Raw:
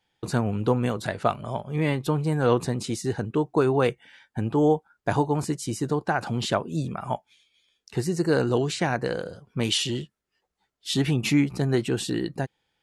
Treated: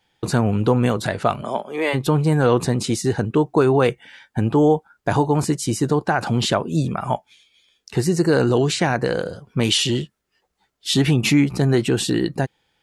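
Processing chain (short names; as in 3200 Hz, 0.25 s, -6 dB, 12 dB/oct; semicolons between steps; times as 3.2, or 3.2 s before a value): 1.41–1.93 HPF 160 Hz -> 440 Hz 24 dB/oct; in parallel at +3 dB: limiter -17.5 dBFS, peak gain reduction 10 dB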